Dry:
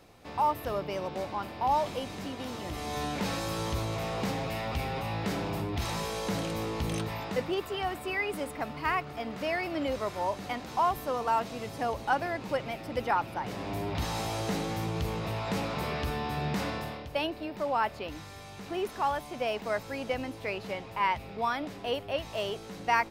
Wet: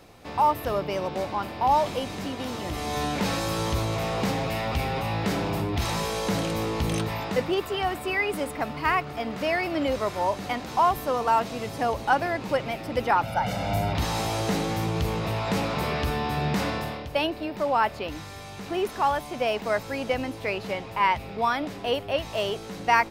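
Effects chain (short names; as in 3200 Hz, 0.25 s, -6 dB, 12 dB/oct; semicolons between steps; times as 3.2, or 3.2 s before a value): 13.23–13.93 comb 1.4 ms, depth 100%; gain +5.5 dB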